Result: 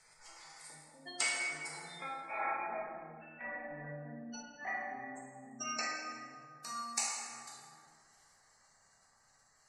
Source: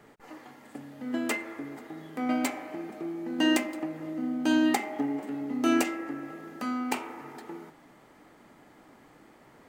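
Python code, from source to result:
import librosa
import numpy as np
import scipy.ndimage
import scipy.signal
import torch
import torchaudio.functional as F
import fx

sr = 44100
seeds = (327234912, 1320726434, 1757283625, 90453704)

y = fx.doppler_pass(x, sr, speed_mps=24, closest_m=4.5, pass_at_s=2.85)
y = fx.band_shelf(y, sr, hz=7000.0, db=12.5, octaves=1.7)
y = fx.hum_notches(y, sr, base_hz=60, count=4)
y = fx.env_lowpass_down(y, sr, base_hz=2100.0, full_db=-38.5)
y = fx.spec_gate(y, sr, threshold_db=-20, keep='strong')
y = fx.over_compress(y, sr, threshold_db=-48.0, ratio=-1.0)
y = fx.tone_stack(y, sr, knobs='10-0-10')
y = fx.rev_plate(y, sr, seeds[0], rt60_s=1.7, hf_ratio=0.7, predelay_ms=0, drr_db=-5.0)
y = y * librosa.db_to_amplitude(15.0)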